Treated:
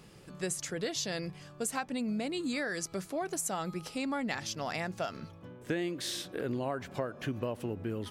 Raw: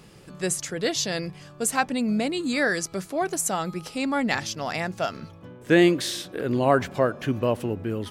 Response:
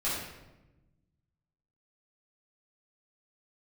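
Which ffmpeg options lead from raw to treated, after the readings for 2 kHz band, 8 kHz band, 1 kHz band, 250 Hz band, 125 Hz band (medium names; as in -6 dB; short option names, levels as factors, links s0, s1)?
-11.0 dB, -8.0 dB, -11.0 dB, -10.5 dB, -9.5 dB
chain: -af "acompressor=threshold=0.0562:ratio=12,volume=0.562"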